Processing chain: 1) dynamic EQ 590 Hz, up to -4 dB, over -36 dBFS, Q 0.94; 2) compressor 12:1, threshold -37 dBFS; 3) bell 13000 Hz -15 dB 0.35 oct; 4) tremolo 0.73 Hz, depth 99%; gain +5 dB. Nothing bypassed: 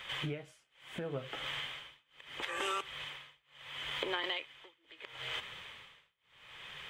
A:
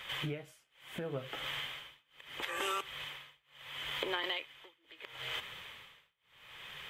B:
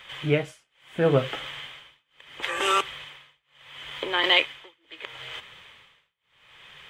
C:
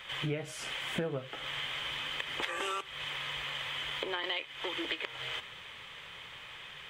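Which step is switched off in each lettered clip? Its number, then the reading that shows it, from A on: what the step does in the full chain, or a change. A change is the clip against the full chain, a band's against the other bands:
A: 3, 8 kHz band +1.5 dB; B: 2, mean gain reduction 5.0 dB; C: 4, momentary loudness spread change -9 LU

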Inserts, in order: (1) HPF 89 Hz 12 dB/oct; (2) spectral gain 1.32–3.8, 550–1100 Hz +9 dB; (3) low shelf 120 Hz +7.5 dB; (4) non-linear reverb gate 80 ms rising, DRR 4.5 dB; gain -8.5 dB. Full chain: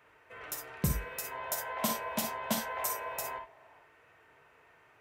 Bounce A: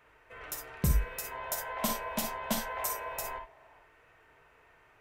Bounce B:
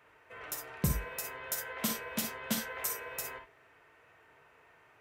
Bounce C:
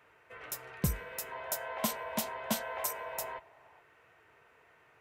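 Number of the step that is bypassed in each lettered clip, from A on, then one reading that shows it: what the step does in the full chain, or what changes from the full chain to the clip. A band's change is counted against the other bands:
1, 125 Hz band +3.0 dB; 2, 1 kHz band -7.5 dB; 4, momentary loudness spread change -2 LU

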